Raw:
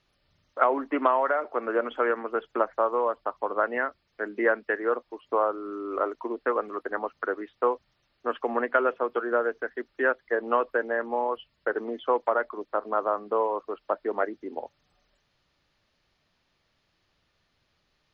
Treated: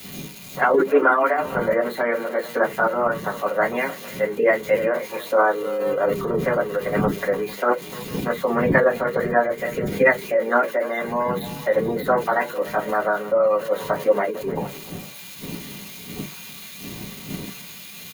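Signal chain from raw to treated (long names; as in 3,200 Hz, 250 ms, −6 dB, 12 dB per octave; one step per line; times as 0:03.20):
spike at every zero crossing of −22 dBFS
wind on the microphone 160 Hz −41 dBFS
notch filter 2,600 Hz, Q 16
gate on every frequency bin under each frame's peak −30 dB strong
dynamic equaliser 740 Hz, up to −5 dB, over −35 dBFS, Q 1.2
multi-tap delay 300/452 ms −15/−17.5 dB
convolution reverb RT60 0.15 s, pre-delay 3 ms, DRR −1.5 dB
formants moved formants +4 semitones
multiband upward and downward expander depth 40%
level −7.5 dB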